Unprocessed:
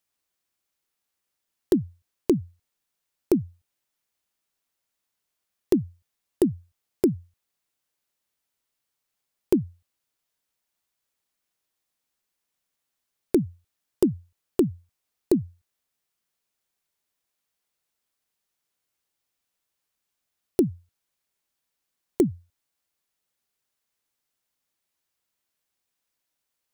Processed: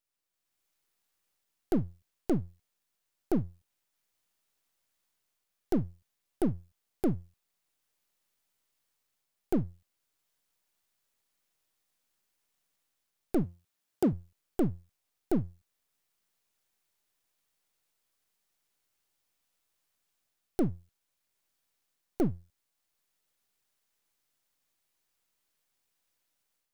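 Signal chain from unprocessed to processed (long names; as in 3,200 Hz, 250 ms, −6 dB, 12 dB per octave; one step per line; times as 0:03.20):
gain on one half-wave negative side −12 dB
0:13.43–0:14.13: high-pass filter 97 Hz
automatic gain control gain up to 9 dB
brickwall limiter −13 dBFS, peak gain reduction 10.5 dB
level −4 dB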